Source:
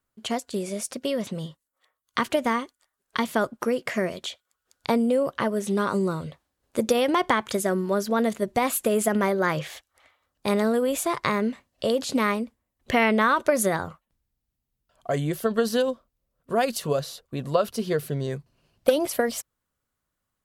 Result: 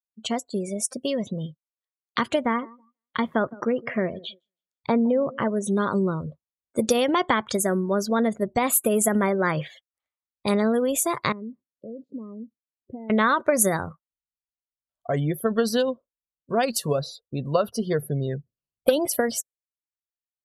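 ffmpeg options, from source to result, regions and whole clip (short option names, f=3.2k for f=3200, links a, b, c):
-filter_complex "[0:a]asettb=1/sr,asplit=3[a][b][c];[a]atrim=end=2.434[d];[b]atrim=start=2.43:end=5.5,asetpts=PTS-STARTPTS,afade=t=in:d=0.004:c=qsin,afade=t=out:st=3.066:d=0.004:c=qsin,equalizer=f=8.7k:t=o:w=1.8:g=-10.5,aecho=1:1:162|324|486:0.0944|0.0359|0.0136,atrim=end_sample=135387[e];[c]atrim=start=5.496[f];[d][e]acrossfade=d=0.004:c1=hsin:c2=qsin[g];[g][f]acrossfade=d=0.004:c1=qsin:c2=hsin,asettb=1/sr,asplit=3[h][i][j];[h]atrim=end=11.324[k];[i]atrim=start=11.32:end=13.1,asetpts=PTS-STARTPTS,afade=t=in:d=0.004:c=qsin,afade=t=out:st=1.776:d=0.004:c=qsin,acompressor=threshold=-41dB:ratio=2:attack=3.2:release=140:knee=1:detection=peak,bandpass=f=250:t=q:w=0.91[l];[j]atrim=start=13.096[m];[k][l]acrossfade=d=0.004:c1=hsin:c2=qsin[n];[n][m]acrossfade=d=0.004:c1=qsin:c2=hsin,afftdn=nr=34:nf=-38,bass=f=250:g=3,treble=f=4k:g=7"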